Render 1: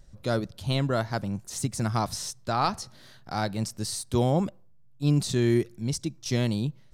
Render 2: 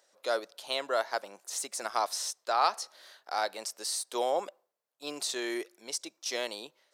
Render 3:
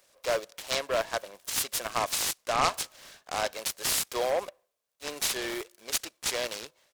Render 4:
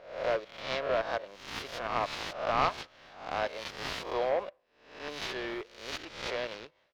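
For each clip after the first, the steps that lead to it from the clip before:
high-pass filter 480 Hz 24 dB per octave
high-shelf EQ 5,300 Hz +10 dB; comb filter 1.8 ms, depth 36%; short delay modulated by noise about 1,200 Hz, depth 0.053 ms
peak hold with a rise ahead of every peak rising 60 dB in 0.62 s; high-frequency loss of the air 270 metres; level −2 dB

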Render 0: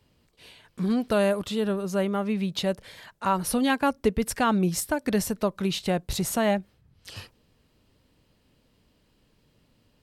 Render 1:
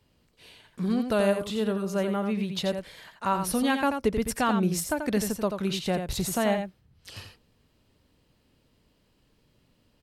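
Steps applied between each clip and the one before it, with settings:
single-tap delay 86 ms −7 dB
level −2 dB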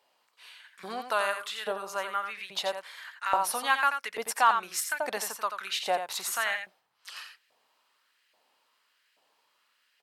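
auto-filter high-pass saw up 1.2 Hz 680–1,900 Hz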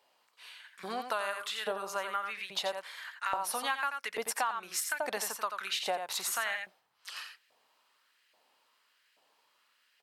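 downward compressor 6 to 1, threshold −29 dBFS, peak gain reduction 12.5 dB

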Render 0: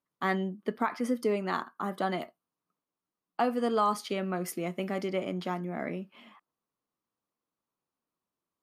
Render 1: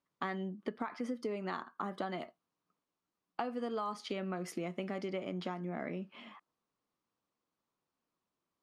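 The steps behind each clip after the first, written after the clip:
low-pass filter 6,400 Hz 12 dB per octave
downward compressor, threshold −37 dBFS, peak gain reduction 14 dB
level +2 dB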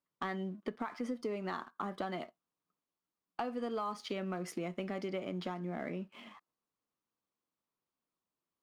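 leveller curve on the samples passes 1
level −3.5 dB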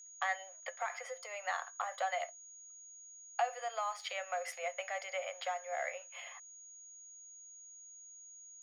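steady tone 6,700 Hz −52 dBFS
Chebyshev high-pass with heavy ripple 510 Hz, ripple 9 dB
level +8.5 dB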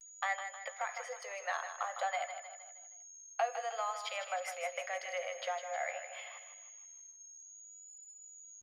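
pitch vibrato 0.53 Hz 54 cents
repeating echo 156 ms, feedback 48%, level −9 dB

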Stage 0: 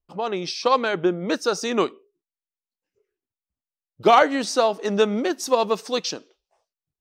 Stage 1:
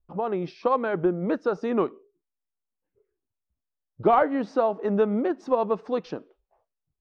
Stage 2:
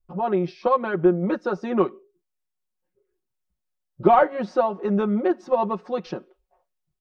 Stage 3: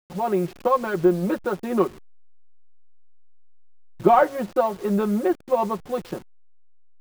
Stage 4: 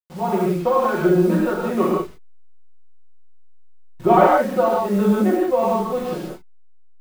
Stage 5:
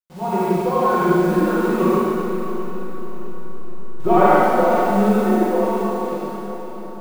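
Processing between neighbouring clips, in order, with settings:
low-pass filter 1,300 Hz 12 dB per octave; in parallel at +2 dB: downward compressor, threshold −27 dBFS, peak gain reduction 15 dB; on the sum: low-shelf EQ 90 Hz +11 dB; level −6 dB
comb filter 5.5 ms, depth 92%; amplitude modulation by smooth noise, depth 50%; level +2 dB
hold until the input has moved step −38 dBFS
reverb whose tail is shaped and stops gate 210 ms flat, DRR −6 dB; level −2.5 dB
fade-out on the ending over 2.06 s; feedback delay with all-pass diffusion 555 ms, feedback 52%, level −11 dB; four-comb reverb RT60 2.1 s, combs from 33 ms, DRR −4 dB; level −3.5 dB

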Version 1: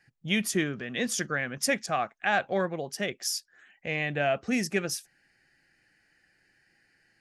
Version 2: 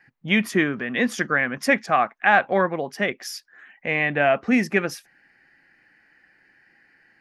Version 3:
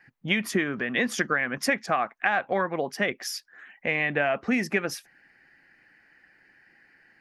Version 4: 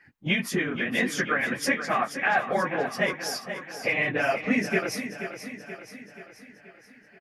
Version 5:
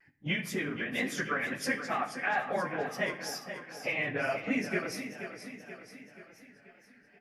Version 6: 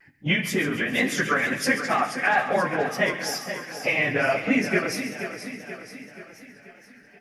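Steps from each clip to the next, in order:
octave-band graphic EQ 250/500/1,000/2,000/8,000 Hz +8/+3/+10/+8/−8 dB
harmonic and percussive parts rebalanced percussive +4 dB; downward compressor 6 to 1, threshold −18 dBFS, peak gain reduction 9 dB; level −2.5 dB
random phases in long frames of 50 ms; on a send: repeating echo 480 ms, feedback 54%, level −10 dB
tape wow and flutter 74 cents; rectangular room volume 230 cubic metres, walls mixed, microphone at 0.33 metres; level −7 dB
delay with a high-pass on its return 136 ms, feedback 59%, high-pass 2,000 Hz, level −12 dB; level +9 dB

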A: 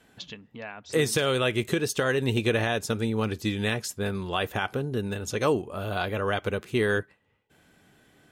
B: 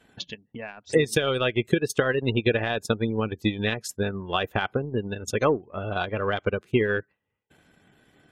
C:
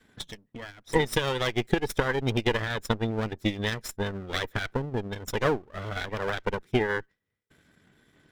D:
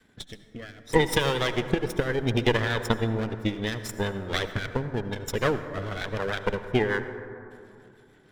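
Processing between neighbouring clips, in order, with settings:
gate on every frequency bin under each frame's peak −25 dB strong; transient designer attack +6 dB, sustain −11 dB
lower of the sound and its delayed copy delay 0.55 ms; level −1.5 dB
rotating-speaker cabinet horn 0.65 Hz, later 6.7 Hz, at 0:04.26; on a send at −10 dB: convolution reverb RT60 2.7 s, pre-delay 63 ms; on the sum: level +3 dB

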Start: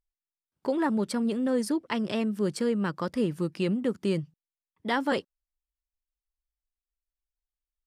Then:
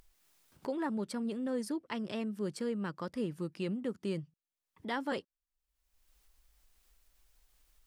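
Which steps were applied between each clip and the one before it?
upward compression, threshold −33 dBFS
level −8.5 dB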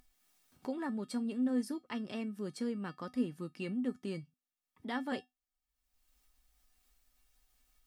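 tuned comb filter 250 Hz, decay 0.17 s, harmonics odd, mix 80%
level +8 dB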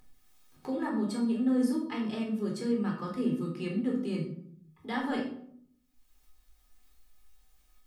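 rectangular room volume 960 cubic metres, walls furnished, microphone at 4 metres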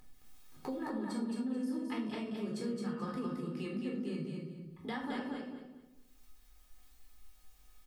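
downward compressor 6 to 1, threshold −38 dBFS, peak gain reduction 15 dB
on a send: repeating echo 217 ms, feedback 26%, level −4 dB
on the sum: level +1.5 dB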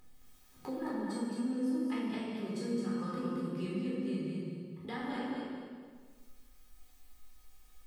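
dense smooth reverb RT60 1.6 s, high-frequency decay 0.85×, DRR −1 dB
level −2.5 dB

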